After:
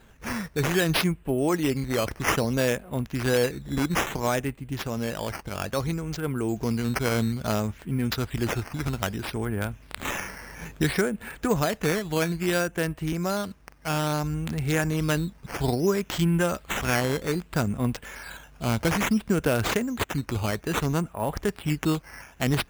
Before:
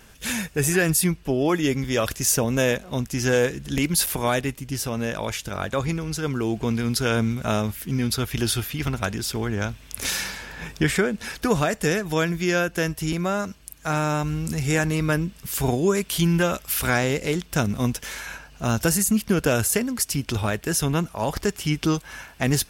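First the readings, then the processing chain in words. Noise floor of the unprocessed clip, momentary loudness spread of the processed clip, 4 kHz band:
-49 dBFS, 8 LU, -3.5 dB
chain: local Wiener filter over 9 samples; decimation with a swept rate 8×, swing 100% 0.6 Hz; trim -2.5 dB

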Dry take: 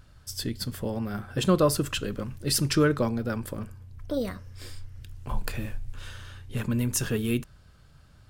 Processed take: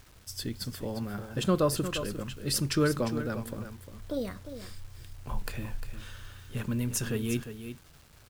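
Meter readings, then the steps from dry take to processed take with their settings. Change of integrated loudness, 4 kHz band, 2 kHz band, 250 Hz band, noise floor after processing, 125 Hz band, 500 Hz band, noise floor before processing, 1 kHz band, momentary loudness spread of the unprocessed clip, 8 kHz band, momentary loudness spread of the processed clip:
-4.0 dB, -3.5 dB, -3.5 dB, -3.5 dB, -56 dBFS, -3.5 dB, -3.5 dB, -55 dBFS, -3.5 dB, 20 LU, -3.5 dB, 19 LU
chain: crackle 520 per s -44 dBFS; delay 352 ms -10.5 dB; bit crusher 9-bit; trim -4 dB

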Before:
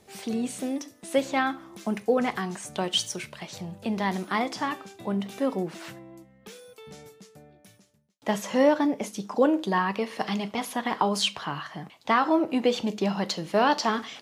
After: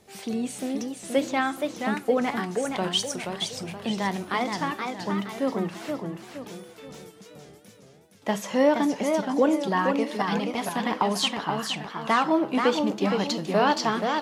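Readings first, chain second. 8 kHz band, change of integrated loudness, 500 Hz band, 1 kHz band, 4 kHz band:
+1.0 dB, +1.0 dB, +1.5 dB, +1.5 dB, +1.5 dB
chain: modulated delay 473 ms, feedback 41%, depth 185 cents, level -5 dB

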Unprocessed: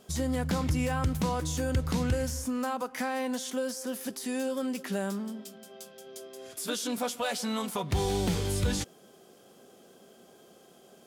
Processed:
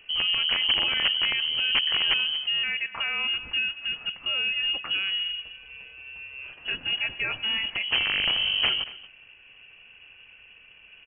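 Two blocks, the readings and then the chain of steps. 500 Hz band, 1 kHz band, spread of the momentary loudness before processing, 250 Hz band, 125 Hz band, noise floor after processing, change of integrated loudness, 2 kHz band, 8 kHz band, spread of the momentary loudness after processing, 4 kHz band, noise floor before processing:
-13.5 dB, -4.5 dB, 14 LU, -18.5 dB, -19.0 dB, -53 dBFS, +7.0 dB, +13.5 dB, under -40 dB, 17 LU, +19.0 dB, -57 dBFS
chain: bass shelf 480 Hz +3 dB; in parallel at -2.5 dB: peak limiter -25 dBFS, peak gain reduction 10.5 dB; on the sum: integer overflow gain 15.5 dB; crackle 430 per s -46 dBFS; on a send: delay 230 ms -18 dB; on the sum: frequency inversion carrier 3.1 kHz; trim -1.5 dB

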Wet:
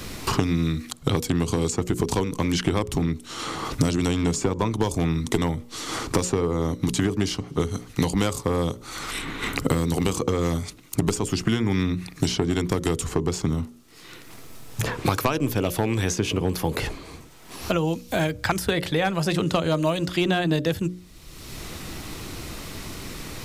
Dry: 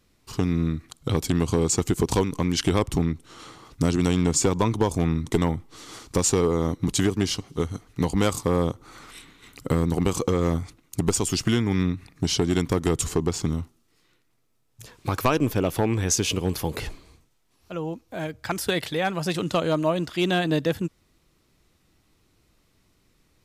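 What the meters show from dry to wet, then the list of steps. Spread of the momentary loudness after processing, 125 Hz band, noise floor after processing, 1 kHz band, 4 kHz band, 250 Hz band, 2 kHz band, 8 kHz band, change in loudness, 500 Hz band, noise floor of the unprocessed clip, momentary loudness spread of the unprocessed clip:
13 LU, +0.5 dB, -45 dBFS, +1.0 dB, +1.0 dB, +0.5 dB, +3.0 dB, -3.0 dB, -0.5 dB, -0.5 dB, -66 dBFS, 11 LU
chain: hum notches 60/120/180/240/300/360/420/480/540/600 Hz; three bands compressed up and down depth 100%

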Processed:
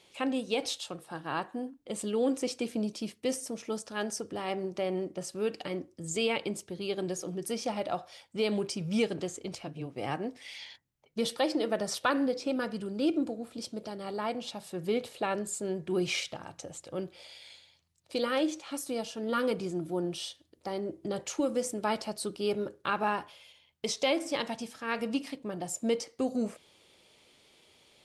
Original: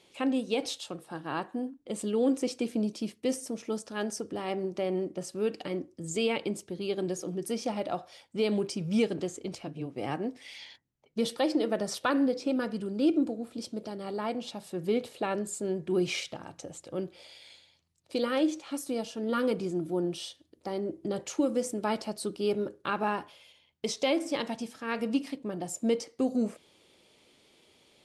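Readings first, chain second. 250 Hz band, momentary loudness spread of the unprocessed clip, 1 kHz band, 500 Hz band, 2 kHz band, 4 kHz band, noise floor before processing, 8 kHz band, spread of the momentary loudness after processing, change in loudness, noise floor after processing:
-3.0 dB, 10 LU, +0.5 dB, -1.5 dB, +1.5 dB, +1.5 dB, -67 dBFS, +1.5 dB, 10 LU, -1.5 dB, -67 dBFS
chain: peaking EQ 280 Hz -5 dB 1.6 oct; trim +1.5 dB

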